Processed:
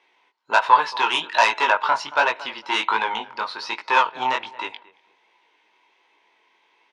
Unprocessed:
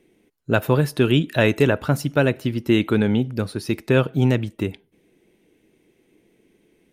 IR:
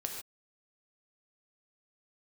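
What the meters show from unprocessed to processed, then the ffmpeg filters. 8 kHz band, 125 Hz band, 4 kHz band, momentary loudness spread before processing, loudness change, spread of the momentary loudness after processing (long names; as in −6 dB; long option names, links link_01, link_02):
+0.5 dB, below −30 dB, +5.0 dB, 9 LU, 0.0 dB, 13 LU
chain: -filter_complex "[0:a]lowpass=frequency=4800:width=0.5412,lowpass=frequency=4800:width=1.3066,highshelf=frequency=2200:gain=9,asplit=2[link_01][link_02];[link_02]adelay=226,lowpass=frequency=1500:poles=1,volume=-19dB,asplit=2[link_03][link_04];[link_04]adelay=226,lowpass=frequency=1500:poles=1,volume=0.25[link_05];[link_03][link_05]amix=inputs=2:normalize=0[link_06];[link_01][link_06]amix=inputs=2:normalize=0,aeval=exprs='1*sin(PI/2*2*val(0)/1)':channel_layout=same,flanger=delay=17:depth=6.8:speed=1.3,highpass=frequency=950:width_type=q:width=10,volume=-6.5dB"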